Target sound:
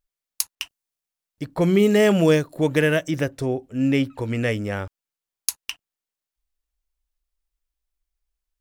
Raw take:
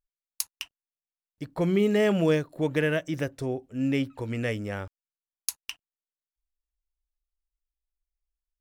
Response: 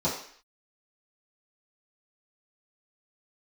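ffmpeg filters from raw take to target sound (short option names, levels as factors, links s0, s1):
-filter_complex "[0:a]asettb=1/sr,asplit=3[s0][s1][s2];[s0]atrim=end=0.554[s3];[s1]atrim=start=0.55:end=3.11,asetpts=PTS-STARTPTS,afade=t=in:d=0.004:c=qsin,afade=t=out:st=2.556:d=0.004:c=qsin,adynamicequalizer=threshold=0.00562:dfrequency=4500:dqfactor=0.7:tfrequency=4500:tqfactor=0.7:attack=5:release=100:ratio=0.375:range=3:mode=boostabove:tftype=highshelf[s4];[s2]atrim=start=3.106[s5];[s3][s4]acrossfade=d=0.004:c1=hsin:c2=qsin[s6];[s6][s5]acrossfade=d=0.004:c1=qsin:c2=hsin,volume=2"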